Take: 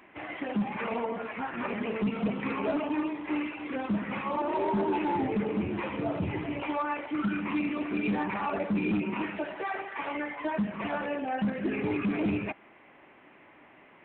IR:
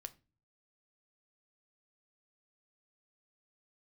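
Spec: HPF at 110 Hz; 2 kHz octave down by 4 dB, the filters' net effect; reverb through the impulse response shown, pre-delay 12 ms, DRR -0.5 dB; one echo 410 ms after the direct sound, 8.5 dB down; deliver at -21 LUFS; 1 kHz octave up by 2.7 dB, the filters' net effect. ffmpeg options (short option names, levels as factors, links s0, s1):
-filter_complex "[0:a]highpass=110,equalizer=f=1000:t=o:g=4.5,equalizer=f=2000:t=o:g=-6.5,aecho=1:1:410:0.376,asplit=2[s0][s1];[1:a]atrim=start_sample=2205,adelay=12[s2];[s1][s2]afir=irnorm=-1:irlink=0,volume=1.88[s3];[s0][s3]amix=inputs=2:normalize=0,volume=2.51"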